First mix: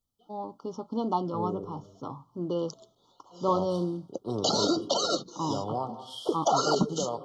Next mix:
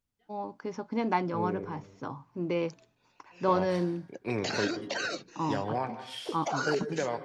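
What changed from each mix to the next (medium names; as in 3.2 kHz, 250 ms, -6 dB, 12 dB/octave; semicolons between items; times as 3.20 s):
background -9.0 dB; master: remove brick-wall FIR band-stop 1.4–2.9 kHz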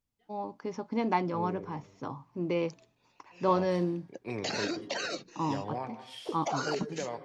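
second voice -5.0 dB; master: add peaking EQ 1.5 kHz -6 dB 0.25 oct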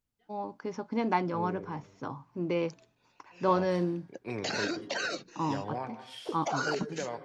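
master: add peaking EQ 1.5 kHz +6 dB 0.25 oct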